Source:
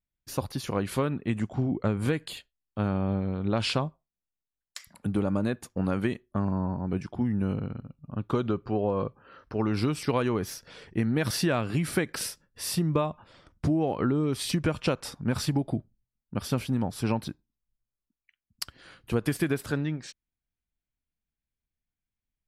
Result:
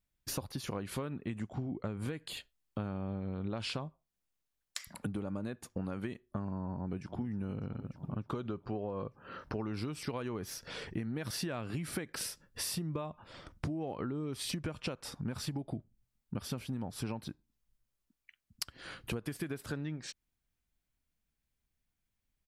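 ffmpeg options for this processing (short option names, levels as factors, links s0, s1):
-filter_complex "[0:a]asplit=2[s0][s1];[s1]afade=t=in:st=6.75:d=0.01,afade=t=out:st=7.21:d=0.01,aecho=0:1:300|600|900|1200|1500|1800|2100|2400|2700|3000:0.133352|0.100014|0.0750106|0.0562579|0.0421935|0.0316451|0.0237338|0.0178004|0.0133503|0.0100127[s2];[s0][s2]amix=inputs=2:normalize=0,acompressor=threshold=0.00891:ratio=6,volume=1.78"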